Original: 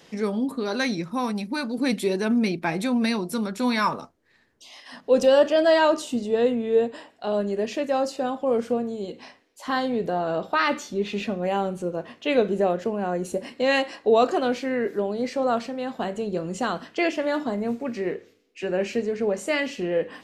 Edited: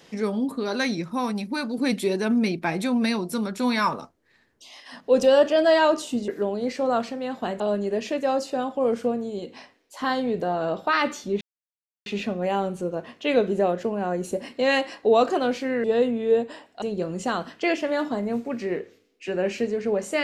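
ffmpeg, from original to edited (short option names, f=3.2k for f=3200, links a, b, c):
-filter_complex "[0:a]asplit=6[a][b][c][d][e][f];[a]atrim=end=6.282[g];[b]atrim=start=14.848:end=16.172[h];[c]atrim=start=7.258:end=11.07,asetpts=PTS-STARTPTS,afade=t=out:st=3.808:d=0.004:c=hsin,apad=pad_dur=0.65[i];[d]atrim=start=11.07:end=14.852,asetpts=PTS-STARTPTS,afade=t=in:d=0.004:c=hsin[j];[e]atrim=start=6.278:end=7.262[k];[f]atrim=start=16.168[l];[g][h]acrossfade=d=0.004:c1=hsin:c2=hsin[m];[i][j]concat=n=2:v=0:a=1[n];[m][n]acrossfade=d=0.004:c1=hsin:c2=hsin[o];[o][k]acrossfade=d=0.004:c1=hsin:c2=hsin[p];[p][l]acrossfade=d=0.004:c1=hsin:c2=hsin"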